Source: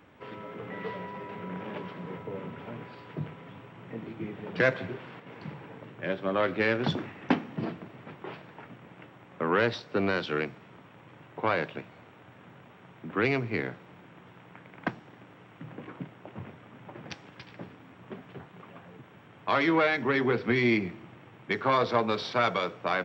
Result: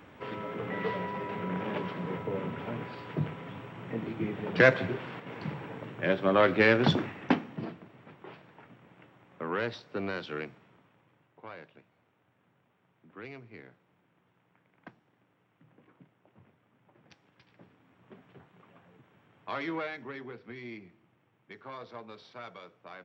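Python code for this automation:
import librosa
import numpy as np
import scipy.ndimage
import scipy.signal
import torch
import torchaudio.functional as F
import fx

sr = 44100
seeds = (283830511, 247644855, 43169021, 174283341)

y = fx.gain(x, sr, db=fx.line((6.98, 4.0), (7.8, -7.0), (10.53, -7.0), (11.34, -18.5), (16.91, -18.5), (18.24, -10.0), (19.72, -10.0), (20.38, -19.0)))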